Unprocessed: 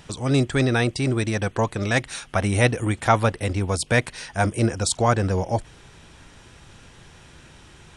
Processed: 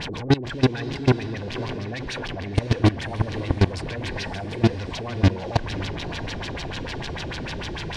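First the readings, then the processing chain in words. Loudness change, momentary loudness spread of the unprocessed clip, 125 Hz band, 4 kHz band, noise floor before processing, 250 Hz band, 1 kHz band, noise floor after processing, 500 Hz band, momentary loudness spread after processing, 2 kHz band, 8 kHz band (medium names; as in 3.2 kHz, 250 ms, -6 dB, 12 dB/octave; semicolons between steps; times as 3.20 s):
-3.0 dB, 5 LU, -0.5 dB, +0.5 dB, -49 dBFS, 0.0 dB, -6.0 dB, -32 dBFS, -3.5 dB, 10 LU, -5.0 dB, -12.0 dB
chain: jump at every zero crossing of -22.5 dBFS; in parallel at -0.5 dB: gain riding within 5 dB 2 s; on the sum: saturation -11.5 dBFS, distortion -12 dB; Butterworth band-stop 1.3 kHz, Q 6.5; LFO low-pass sine 6.7 Hz 340–4800 Hz; peak limiter -15 dBFS, peak gain reduction 11 dB; level held to a coarse grid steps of 19 dB; on a send: echo that smears into a reverb 571 ms, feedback 44%, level -13 dB; on the sum: trim +6.5 dB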